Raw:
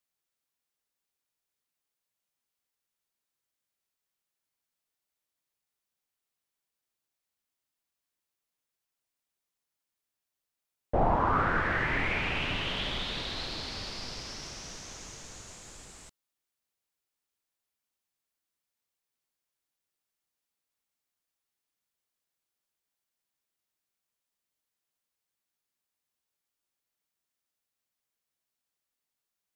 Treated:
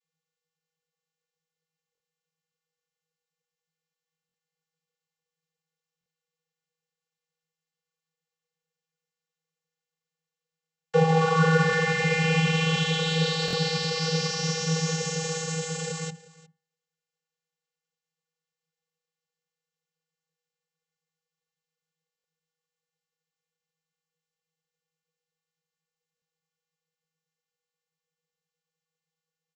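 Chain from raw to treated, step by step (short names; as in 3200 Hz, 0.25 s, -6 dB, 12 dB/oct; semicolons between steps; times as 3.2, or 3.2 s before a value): in parallel at -7 dB: fuzz box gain 46 dB, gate -50 dBFS; on the sum: high shelf 3800 Hz +8 dB; comb 4.3 ms, depth 72%; limiter -14.5 dBFS, peak gain reduction 8.5 dB; de-hum 223.6 Hz, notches 15; vocoder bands 32, square 161 Hz; on a send: echo 0.358 s -21 dB; on the sum: stuck buffer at 1.93/4.27/5.99/13.46/22.17/26.15, samples 1024, times 2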